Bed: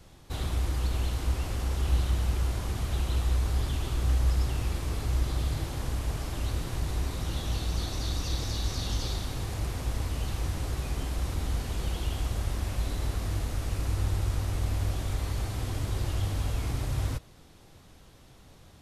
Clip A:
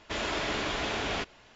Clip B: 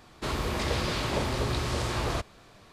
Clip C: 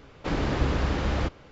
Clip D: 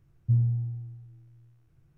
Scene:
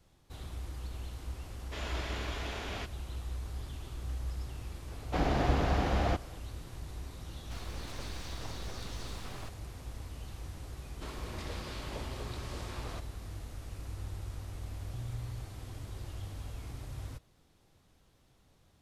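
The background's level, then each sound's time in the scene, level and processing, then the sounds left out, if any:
bed -12.5 dB
1.62 s: add A -9 dB
4.88 s: add C -4 dB + peaking EQ 720 Hz +10.5 dB 0.32 oct
7.28 s: add B -14 dB + full-wave rectifier
10.79 s: add B -13.5 dB
14.65 s: add D -10.5 dB + peak limiter -27 dBFS

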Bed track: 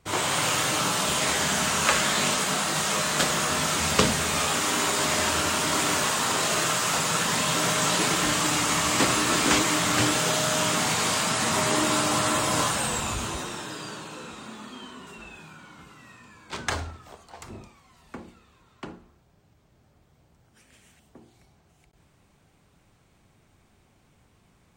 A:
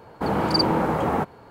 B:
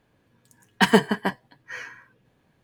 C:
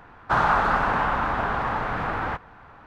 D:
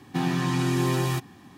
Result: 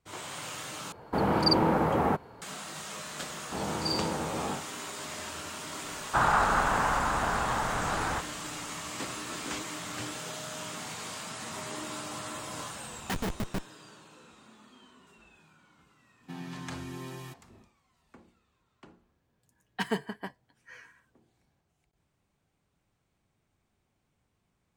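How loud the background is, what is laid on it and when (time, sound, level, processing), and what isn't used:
bed track -15 dB
0.92 s: replace with A -3 dB
3.31 s: add A -12.5 dB + spectral sustain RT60 0.42 s
5.84 s: add C -4 dB
12.29 s: add B -3 dB + Schmitt trigger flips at -21.5 dBFS
16.14 s: add D -16 dB, fades 0.10 s + comb 4.5 ms, depth 35%
18.98 s: add B -14 dB

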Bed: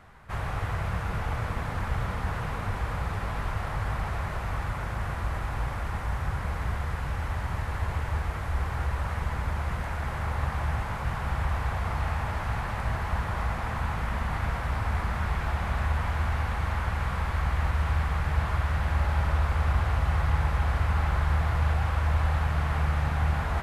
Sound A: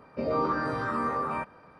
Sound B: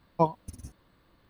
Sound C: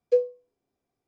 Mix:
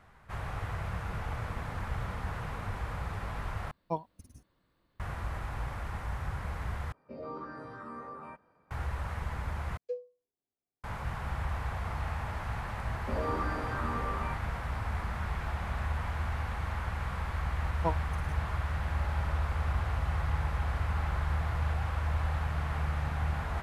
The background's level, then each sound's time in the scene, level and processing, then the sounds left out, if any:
bed -6 dB
3.71 s: replace with B -10 dB
6.92 s: replace with A -13.5 dB + peaking EQ 4.6 kHz -4 dB 2.9 oct
9.77 s: replace with C -16 dB
12.90 s: add A -7 dB
17.65 s: add B -7.5 dB

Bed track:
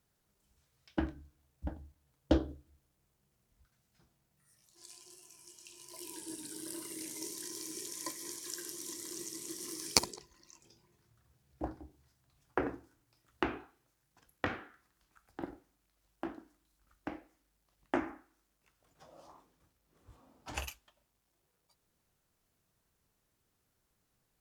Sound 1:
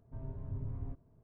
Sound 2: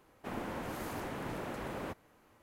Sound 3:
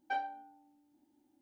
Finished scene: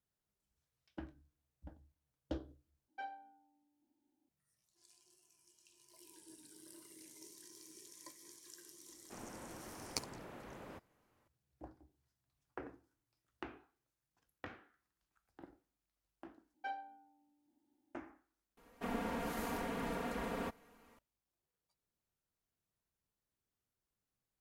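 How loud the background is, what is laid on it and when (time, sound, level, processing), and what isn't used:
bed track -14 dB
2.88 s: replace with 3 -10.5 dB
8.86 s: add 2 -11.5 dB
16.54 s: replace with 3 -7.5 dB
18.57 s: replace with 2 -2 dB + comb 4.3 ms, depth 80%
not used: 1

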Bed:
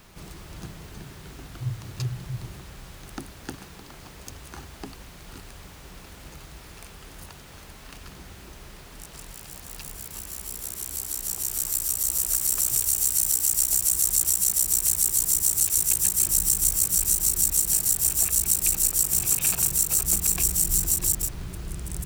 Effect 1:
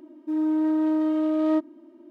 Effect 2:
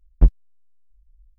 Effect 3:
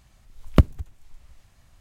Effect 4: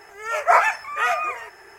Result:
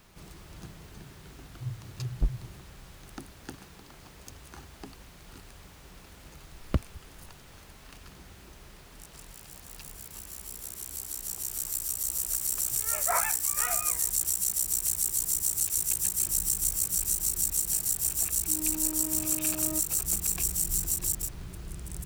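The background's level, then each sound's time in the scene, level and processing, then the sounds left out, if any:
bed -6 dB
2.00 s: add 2 -13 dB
6.16 s: add 3 -12 dB
12.60 s: add 4 -13.5 dB + companding laws mixed up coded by A
18.20 s: add 1 -15 dB

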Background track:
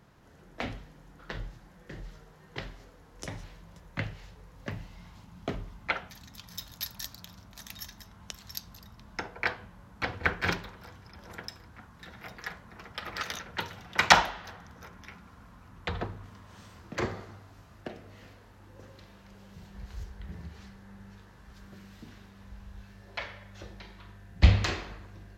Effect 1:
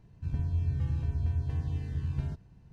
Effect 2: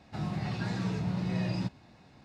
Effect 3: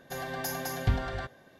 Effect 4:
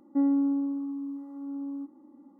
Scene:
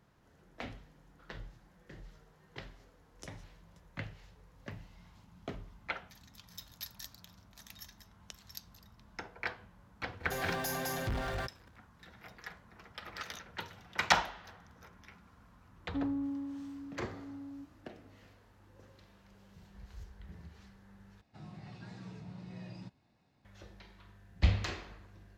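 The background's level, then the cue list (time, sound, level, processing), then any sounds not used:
background track -8 dB
10.20 s: add 3 -17 dB + waveshaping leveller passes 5
15.79 s: add 4 -10.5 dB + steep high-pass 160 Hz
21.21 s: replace with 2 -15.5 dB
not used: 1

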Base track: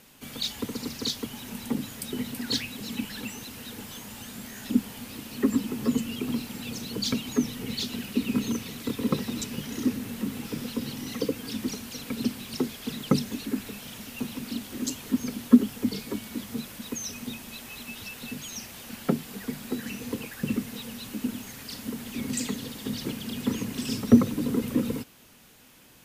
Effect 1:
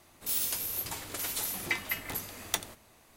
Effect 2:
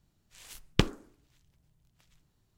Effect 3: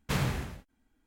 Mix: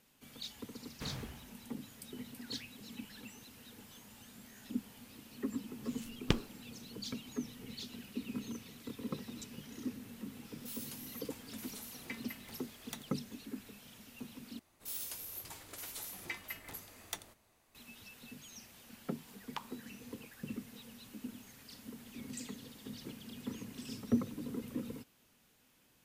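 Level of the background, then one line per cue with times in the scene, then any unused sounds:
base track -14.5 dB
0.91 s: add 3 -14.5 dB
5.51 s: add 2 -6.5 dB
10.39 s: add 1 -15.5 dB
14.59 s: replace with 1 -11 dB
18.77 s: add 2 -18 dB + resonant high-pass 940 Hz, resonance Q 9.6

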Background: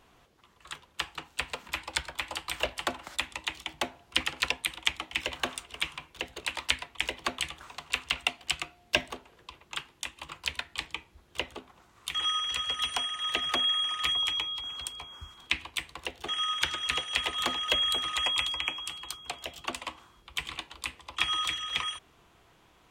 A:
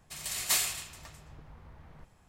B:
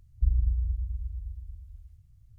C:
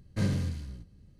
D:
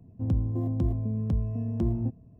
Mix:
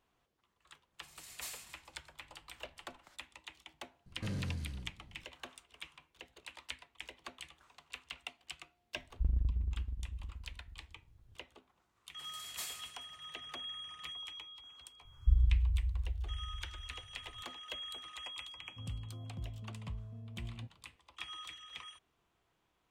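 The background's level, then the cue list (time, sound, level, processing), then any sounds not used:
background -17 dB
0.92 s: add A -17.5 dB
4.06 s: add C -2.5 dB + peak limiter -29 dBFS
8.98 s: add B -5 dB + transient shaper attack -5 dB, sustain -10 dB
12.08 s: add A -15.5 dB + high-pass 77 Hz
15.05 s: add B -2.5 dB
18.57 s: add D -15 dB + peaking EQ 310 Hz -14 dB 0.76 oct

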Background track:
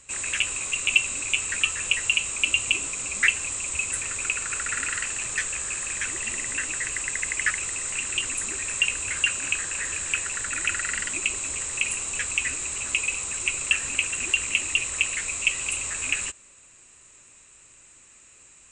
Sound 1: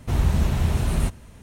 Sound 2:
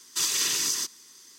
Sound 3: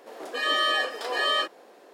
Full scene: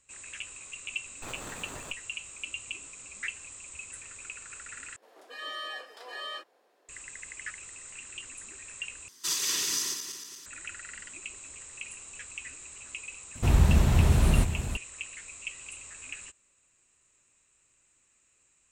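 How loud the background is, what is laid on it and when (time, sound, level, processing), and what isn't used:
background track -15.5 dB
1.06 s: add 2 -12.5 dB + sliding maximum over 17 samples
4.96 s: replace with 3 -13.5 dB + bass shelf 380 Hz -8.5 dB
9.08 s: replace with 2 -4 dB + backward echo that repeats 116 ms, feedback 70%, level -8.5 dB
13.35 s: add 1 -0.5 dB + delay 493 ms -10 dB

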